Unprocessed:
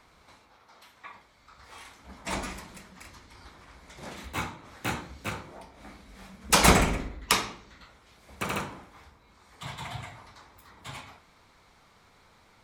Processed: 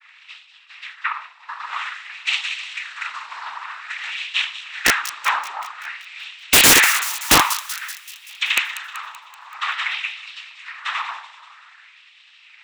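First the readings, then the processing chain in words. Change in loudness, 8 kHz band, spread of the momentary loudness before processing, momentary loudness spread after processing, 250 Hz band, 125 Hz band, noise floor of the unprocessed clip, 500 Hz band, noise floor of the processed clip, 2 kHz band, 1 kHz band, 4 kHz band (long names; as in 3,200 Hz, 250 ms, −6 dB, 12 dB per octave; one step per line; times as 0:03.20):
+9.0 dB, +12.5 dB, 26 LU, 20 LU, +1.0 dB, −5.0 dB, −60 dBFS, +2.0 dB, −50 dBFS, +14.0 dB, +8.0 dB, +13.0 dB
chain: sub-octave generator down 1 octave, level −1 dB
downward expander −53 dBFS
cochlear-implant simulation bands 12
in parallel at −1.5 dB: downward compressor 6 to 1, threshold −45 dBFS, peak gain reduction 28 dB
on the sum: auto-filter high-pass sine 0.51 Hz 940–3,000 Hz
flat-topped bell 1,800 Hz +12.5 dB 2.5 octaves
wrap-around overflow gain 6 dB
on a send: delay with a high-pass on its return 191 ms, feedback 56%, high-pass 3,700 Hz, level −9 dB
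on the sum: dynamic equaliser 300 Hz, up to +5 dB, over −52 dBFS, Q 1.4
level +1 dB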